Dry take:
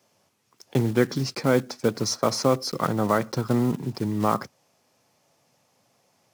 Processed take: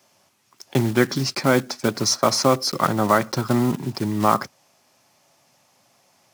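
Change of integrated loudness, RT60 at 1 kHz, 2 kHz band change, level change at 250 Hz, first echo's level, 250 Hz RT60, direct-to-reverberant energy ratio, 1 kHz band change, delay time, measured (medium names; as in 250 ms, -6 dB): +4.0 dB, no reverb, +6.5 dB, +3.0 dB, no echo, no reverb, no reverb, +6.0 dB, no echo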